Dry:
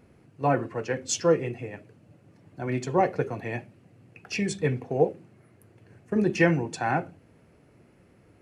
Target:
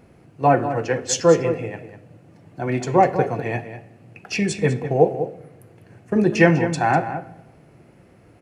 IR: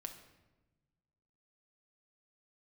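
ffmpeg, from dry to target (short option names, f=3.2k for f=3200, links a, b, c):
-filter_complex "[0:a]equalizer=f=740:w=2.6:g=3.5,asplit=2[a][b];[b]adelay=198.3,volume=-11dB,highshelf=f=4k:g=-4.46[c];[a][c]amix=inputs=2:normalize=0,asplit=2[d][e];[1:a]atrim=start_sample=2205[f];[e][f]afir=irnorm=-1:irlink=0,volume=-1dB[g];[d][g]amix=inputs=2:normalize=0,volume=2dB"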